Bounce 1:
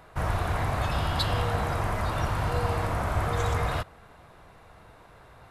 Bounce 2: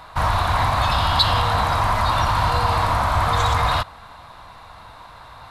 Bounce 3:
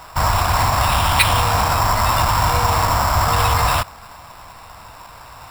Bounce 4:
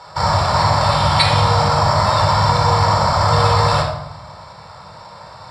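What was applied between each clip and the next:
graphic EQ with 15 bands 160 Hz −4 dB, 400 Hz −10 dB, 1,000 Hz +9 dB, 4,000 Hz +10 dB; in parallel at +2.5 dB: brickwall limiter −18 dBFS, peak gain reduction 10.5 dB
sample-rate reduction 6,400 Hz, jitter 0%; level +2.5 dB
loudspeaker in its box 110–7,600 Hz, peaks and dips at 160 Hz +4 dB, 290 Hz −7 dB, 590 Hz +9 dB, 2,700 Hz −9 dB, 4,500 Hz +9 dB, 6,500 Hz −6 dB; rectangular room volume 2,500 cubic metres, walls furnished, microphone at 4.3 metres; level −3 dB

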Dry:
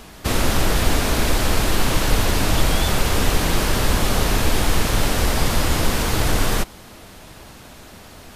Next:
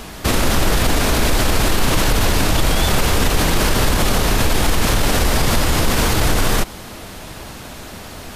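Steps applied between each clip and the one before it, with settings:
boost into a limiter +13.5 dB
level −5.5 dB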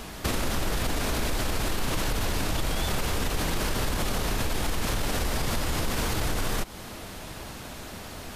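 downward compressor 2.5 to 1, threshold −20 dBFS, peak gain reduction 6.5 dB
level −6 dB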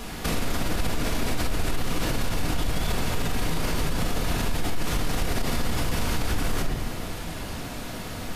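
rectangular room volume 590 cubic metres, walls mixed, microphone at 1.8 metres
brickwall limiter −16 dBFS, peak gain reduction 10.5 dB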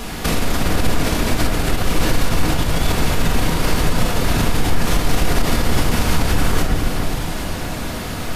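delay that swaps between a low-pass and a high-pass 411 ms, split 2,100 Hz, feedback 52%, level −4.5 dB
level +7.5 dB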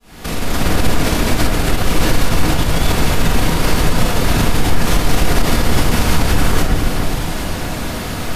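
fade in at the beginning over 0.64 s
level +3 dB

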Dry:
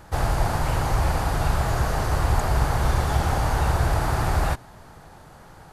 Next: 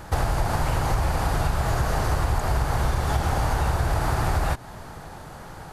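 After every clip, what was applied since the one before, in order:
downward compressor, threshold −26 dBFS, peak gain reduction 11 dB
level +6.5 dB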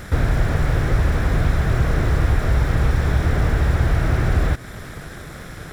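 lower of the sound and its delayed copy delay 0.55 ms
slew-rate limiting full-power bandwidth 29 Hz
level +6.5 dB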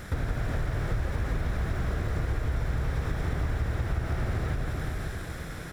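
on a send: reverse bouncing-ball delay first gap 170 ms, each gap 1.1×, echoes 5
on the sum: downward compressor 4 to 1, threshold −20 dBFS, peak gain reduction 10 dB
level −6 dB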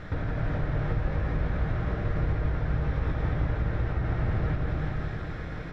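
high-frequency loss of the air 230 metres
convolution reverb RT60 1.7 s, pre-delay 6 ms, DRR 2.5 dB

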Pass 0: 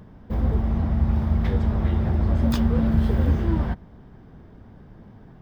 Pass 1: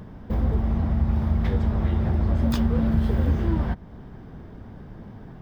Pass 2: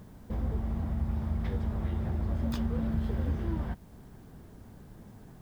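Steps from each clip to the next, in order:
downward compressor 1.5 to 1, threshold −34 dBFS, peak gain reduction 7.5 dB; level +5 dB
bit-depth reduction 10 bits, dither triangular; level −9 dB

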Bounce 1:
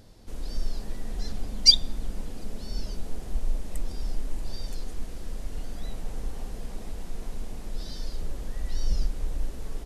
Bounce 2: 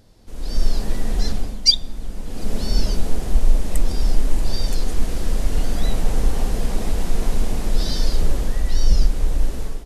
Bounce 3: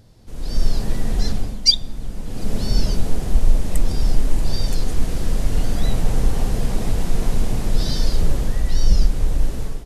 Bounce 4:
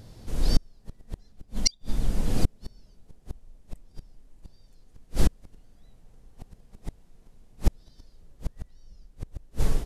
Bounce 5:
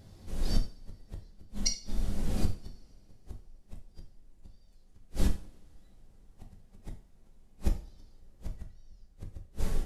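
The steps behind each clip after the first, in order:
automatic gain control gain up to 16.5 dB; level −1 dB
parametric band 120 Hz +8 dB 0.94 octaves
gate with flip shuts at −10 dBFS, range −39 dB; level +3 dB
coupled-rooms reverb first 0.39 s, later 3.7 s, from −28 dB, DRR 1.5 dB; level −8 dB

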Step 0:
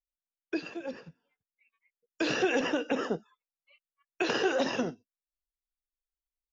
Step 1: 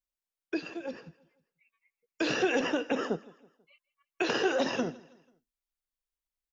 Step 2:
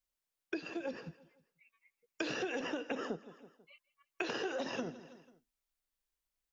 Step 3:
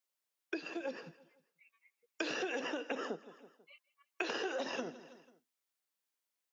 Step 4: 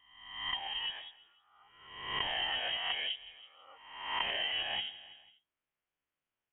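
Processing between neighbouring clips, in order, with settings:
repeating echo 163 ms, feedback 43%, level −22 dB
downward compressor 6 to 1, threshold −38 dBFS, peak gain reduction 14.5 dB; level +2.5 dB
Bessel high-pass filter 300 Hz, order 2; level +1 dB
peak hold with a rise ahead of every peak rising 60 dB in 0.89 s; voice inversion scrambler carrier 3,500 Hz

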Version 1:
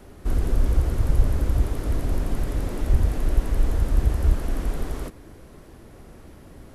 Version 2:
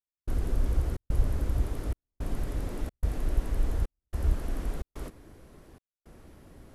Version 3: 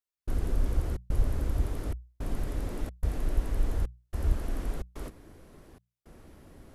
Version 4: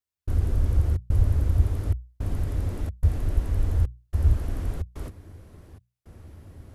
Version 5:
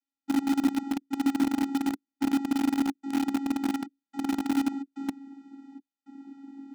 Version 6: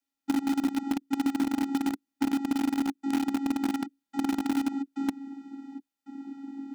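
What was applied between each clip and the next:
gate pattern "..xxxxx.xxxxxx" 109 BPM −60 dB; level −6.5 dB
mains-hum notches 60/120/180 Hz
parametric band 89 Hz +14.5 dB 1 octave
channel vocoder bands 16, square 275 Hz; in parallel at −5.5 dB: bit reduction 5 bits; on the sum: level +3.5 dB
downward compressor, threshold −28 dBFS, peak gain reduction 9.5 dB; level +5 dB

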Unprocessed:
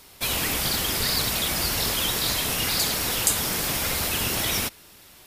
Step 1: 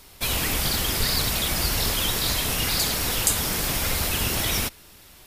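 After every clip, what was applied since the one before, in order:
low-shelf EQ 71 Hz +11 dB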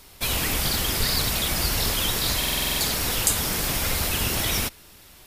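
buffer that repeats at 0:02.39, samples 2,048, times 8

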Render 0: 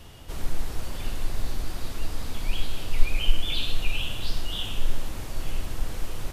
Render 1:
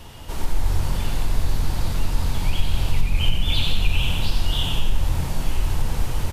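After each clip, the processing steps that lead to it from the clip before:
parametric band 910 Hz +7.5 dB 0.23 octaves
downward compressor, threshold −18 dBFS, peak gain reduction 11 dB
on a send: echo with shifted repeats 91 ms, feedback 51%, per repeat −46 Hz, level −6 dB
on the sum: level +5 dB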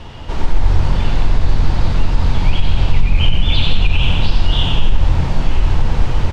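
high-frequency loss of the air 150 metres
boost into a limiter +9.5 dB
level −1 dB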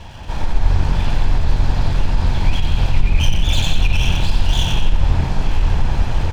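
lower of the sound and its delayed copy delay 1.2 ms
level −1 dB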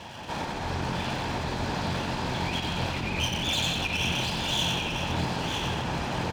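high-pass filter 180 Hz 12 dB per octave
in parallel at +1 dB: brickwall limiter −22 dBFS, peak gain reduction 11 dB
on the sum: single-tap delay 950 ms −6.5 dB
level −7.5 dB

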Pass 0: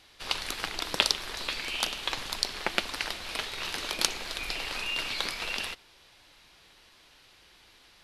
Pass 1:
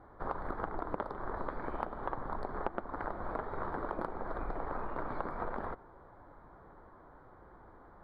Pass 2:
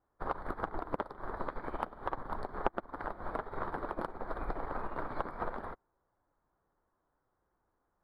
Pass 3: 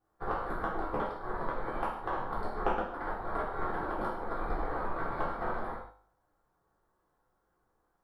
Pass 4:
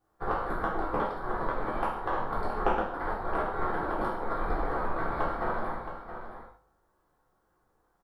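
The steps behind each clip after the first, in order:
inverse Chebyshev low-pass filter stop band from 2,500 Hz, stop band 40 dB; downward compressor 6 to 1, threshold −42 dBFS, peak gain reduction 14.5 dB; level +9 dB
high-shelf EQ 3,200 Hz +8.5 dB; in parallel at −6.5 dB: soft clipping −27 dBFS, distortion −14 dB; on the sum: expander for the loud parts 2.5 to 1, over −49 dBFS; level +3 dB
tuned comb filter 51 Hz, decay 0.6 s, harmonics all, mix 60%; convolution reverb, pre-delay 3 ms, DRR −7.5 dB; level +1.5 dB
single-tap delay 670 ms −10.5 dB; level +3.5 dB

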